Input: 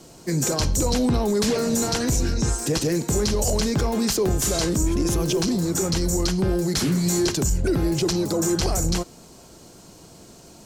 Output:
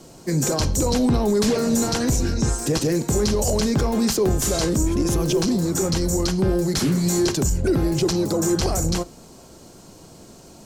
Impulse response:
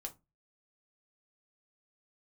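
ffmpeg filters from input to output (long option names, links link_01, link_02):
-filter_complex "[0:a]asplit=2[link_01][link_02];[link_02]lowpass=1700[link_03];[1:a]atrim=start_sample=2205[link_04];[link_03][link_04]afir=irnorm=-1:irlink=0,volume=-6.5dB[link_05];[link_01][link_05]amix=inputs=2:normalize=0"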